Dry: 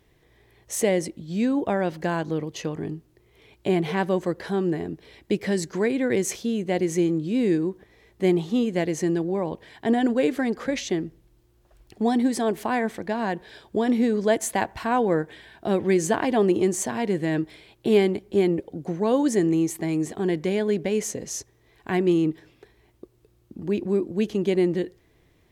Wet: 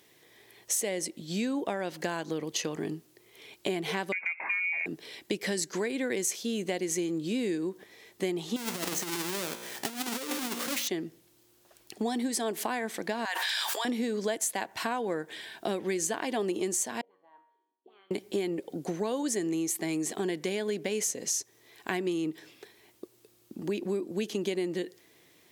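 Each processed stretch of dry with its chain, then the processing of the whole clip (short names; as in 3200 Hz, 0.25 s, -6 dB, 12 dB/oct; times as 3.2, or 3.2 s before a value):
4.12–4.86 inverted band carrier 2600 Hz + compressor 2.5:1, threshold -26 dBFS
8.56–10.88 half-waves squared off + resonator 59 Hz, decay 0.91 s + negative-ratio compressor -28 dBFS, ratio -0.5
13.25–13.85 HPF 910 Hz 24 dB/oct + fast leveller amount 100%
17.01–18.11 rippled Chebyshev low-pass 4500 Hz, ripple 9 dB + auto-wah 220–1300 Hz, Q 8.9, up, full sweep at -26.5 dBFS + resonator 94 Hz, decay 0.82 s, mix 80%
whole clip: HPF 210 Hz 12 dB/oct; high shelf 2700 Hz +12 dB; compressor 6:1, threshold -28 dBFS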